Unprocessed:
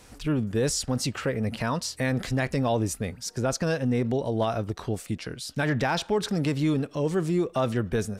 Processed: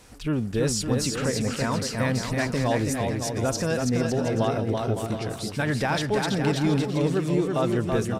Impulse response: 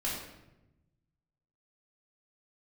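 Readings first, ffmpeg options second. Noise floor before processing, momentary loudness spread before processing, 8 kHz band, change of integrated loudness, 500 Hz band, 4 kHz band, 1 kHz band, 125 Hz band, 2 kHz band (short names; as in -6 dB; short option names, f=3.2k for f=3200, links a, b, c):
-50 dBFS, 6 LU, +2.0 dB, +2.0 dB, +2.0 dB, +2.0 dB, +2.0 dB, +2.0 dB, +2.0 dB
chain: -af "aecho=1:1:330|561|722.7|835.9|915.1:0.631|0.398|0.251|0.158|0.1"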